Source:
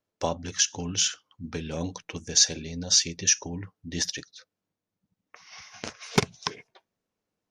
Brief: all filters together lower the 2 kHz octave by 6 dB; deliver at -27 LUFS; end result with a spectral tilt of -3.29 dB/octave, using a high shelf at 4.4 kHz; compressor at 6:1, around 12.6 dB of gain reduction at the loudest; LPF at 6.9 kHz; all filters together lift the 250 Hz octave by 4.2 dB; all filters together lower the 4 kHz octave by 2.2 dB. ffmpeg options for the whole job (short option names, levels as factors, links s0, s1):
-af "lowpass=6900,equalizer=f=250:t=o:g=5.5,equalizer=f=2000:t=o:g=-8,equalizer=f=4000:t=o:g=-4,highshelf=f=4400:g=5,acompressor=threshold=0.0398:ratio=6,volume=2.24"